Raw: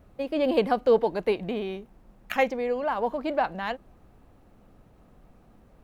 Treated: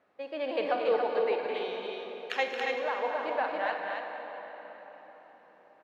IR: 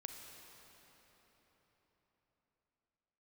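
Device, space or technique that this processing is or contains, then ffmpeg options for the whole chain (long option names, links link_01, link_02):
station announcement: -filter_complex "[0:a]asettb=1/sr,asplit=3[link_01][link_02][link_03];[link_01]atrim=end=1.544[link_04];[link_02]atrim=start=1.54:end=2.47,asetpts=PTS-STARTPTS,afade=type=in:duration=0.004:curve=qsin,afade=type=out:start_time=0.926:duration=0.004:curve=qsin,highshelf=frequency=2800:width_type=q:width=1.5:gain=9[link_05];[link_03]atrim=start=2.466[link_06];[link_04][link_05]acrossfade=duration=0.004:curve1=hsin:curve2=qsin[link_07];[link_07][link_06]acrossfade=duration=0.004:curve1=qsin:curve2=hsin,highpass=490,lowpass=4300,equalizer=frequency=1800:width_type=o:width=0.53:gain=5.5,aecho=1:1:224.5|279.9:0.398|0.631[link_08];[1:a]atrim=start_sample=2205[link_09];[link_08][link_09]afir=irnorm=-1:irlink=0,volume=-1dB"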